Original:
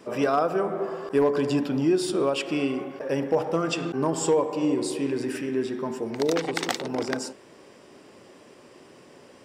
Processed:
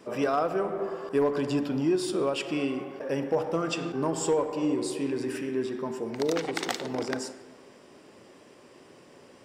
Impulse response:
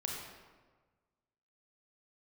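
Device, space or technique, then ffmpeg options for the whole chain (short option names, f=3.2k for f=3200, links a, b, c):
saturated reverb return: -filter_complex "[0:a]asplit=2[a][b];[1:a]atrim=start_sample=2205[c];[b][c]afir=irnorm=-1:irlink=0,asoftclip=type=tanh:threshold=-20.5dB,volume=-10.5dB[d];[a][d]amix=inputs=2:normalize=0,volume=-4.5dB"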